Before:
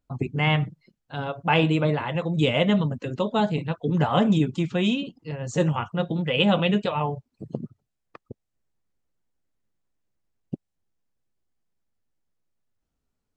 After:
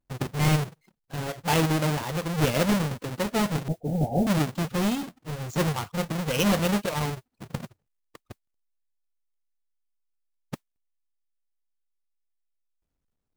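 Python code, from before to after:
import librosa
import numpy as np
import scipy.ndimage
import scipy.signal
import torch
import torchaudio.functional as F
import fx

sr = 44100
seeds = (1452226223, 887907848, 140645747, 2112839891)

y = fx.halfwave_hold(x, sr)
y = fx.steep_lowpass(y, sr, hz=810.0, slope=96, at=(3.68, 4.27))
y = fx.mod_noise(y, sr, seeds[0], snr_db=27)
y = y * librosa.db_to_amplitude(-7.0)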